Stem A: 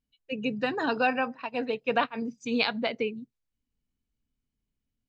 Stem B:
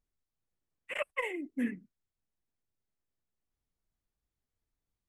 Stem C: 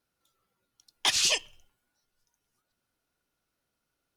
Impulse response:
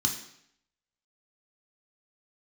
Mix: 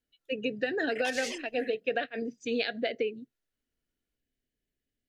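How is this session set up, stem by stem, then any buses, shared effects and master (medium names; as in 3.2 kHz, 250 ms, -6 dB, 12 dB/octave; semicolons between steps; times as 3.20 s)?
-6.0 dB, 0.00 s, bus A, no send, peaking EQ 2.3 kHz -7 dB 0.36 oct
-14.0 dB, 0.00 s, bus A, no send, none
-14.5 dB, 0.00 s, no bus, no send, none
bus A: 0.0 dB, FFT filter 210 Hz 0 dB, 360 Hz +11 dB, 710 Hz +8 dB, 1 kHz -20 dB, 1.7 kHz +14 dB, 5.3 kHz +4 dB; compression, threshold -26 dBFS, peak gain reduction 8 dB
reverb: none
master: none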